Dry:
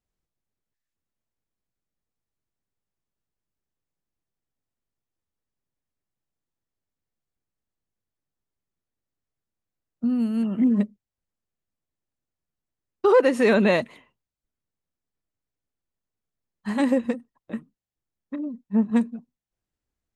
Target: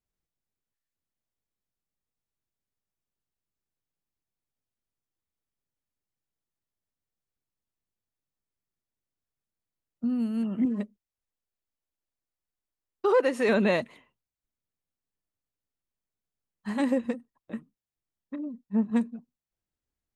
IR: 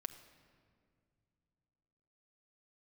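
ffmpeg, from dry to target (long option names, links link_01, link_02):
-filter_complex "[0:a]asettb=1/sr,asplit=3[link_01][link_02][link_03];[link_01]atrim=end=10.654[link_04];[link_02]atrim=start=10.65:end=13.49,asetpts=PTS-STARTPTS,afade=type=in:duration=0.004:curve=qsin,afade=type=out:start_time=2.836:duration=0.004:curve=qsin,equalizer=frequency=140:width_type=o:width=1.6:gain=-8[link_05];[link_03]atrim=start=13.486[link_06];[link_04][link_05]acrossfade=duration=0.004:curve1=hsin:curve2=qsin[link_07];[link_07][link_06]acrossfade=duration=0.004:curve1=qsin:curve2=hsin,volume=-4.5dB"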